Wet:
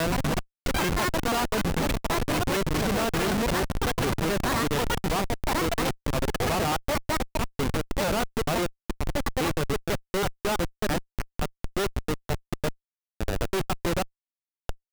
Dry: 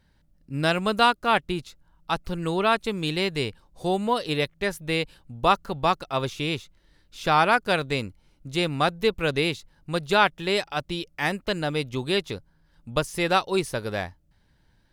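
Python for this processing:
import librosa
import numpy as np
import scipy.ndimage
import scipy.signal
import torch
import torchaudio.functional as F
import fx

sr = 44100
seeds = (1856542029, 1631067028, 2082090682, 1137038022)

y = fx.block_reorder(x, sr, ms=165.0, group=5)
y = fx.echo_pitch(y, sr, ms=122, semitones=7, count=3, db_per_echo=-3.0)
y = fx.schmitt(y, sr, flips_db=-22.5)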